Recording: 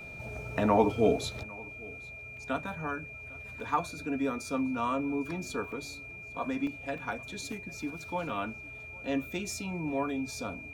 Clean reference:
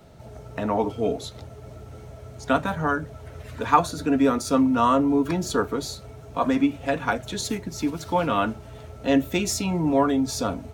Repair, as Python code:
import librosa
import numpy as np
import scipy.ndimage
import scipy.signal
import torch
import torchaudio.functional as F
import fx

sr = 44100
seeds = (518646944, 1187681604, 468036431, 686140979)

y = fx.notch(x, sr, hz=2400.0, q=30.0)
y = fx.fix_interpolate(y, sr, at_s=(2.37, 3.6, 5.72, 6.67, 6.98, 7.52, 8.29), length_ms=2.5)
y = fx.fix_echo_inverse(y, sr, delay_ms=803, level_db=-23.5)
y = fx.fix_level(y, sr, at_s=1.43, step_db=11.5)